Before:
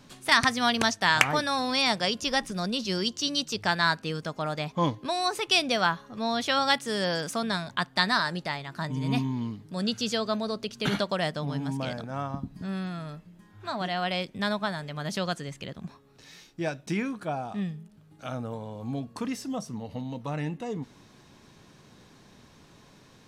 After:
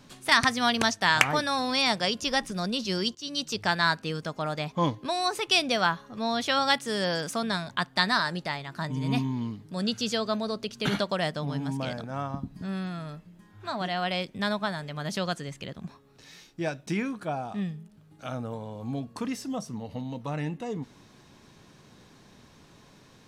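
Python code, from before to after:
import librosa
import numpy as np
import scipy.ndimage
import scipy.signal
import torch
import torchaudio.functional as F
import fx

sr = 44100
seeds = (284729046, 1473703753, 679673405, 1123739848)

y = fx.edit(x, sr, fx.fade_in_from(start_s=3.15, length_s=0.33, floor_db=-18.0), tone=tone)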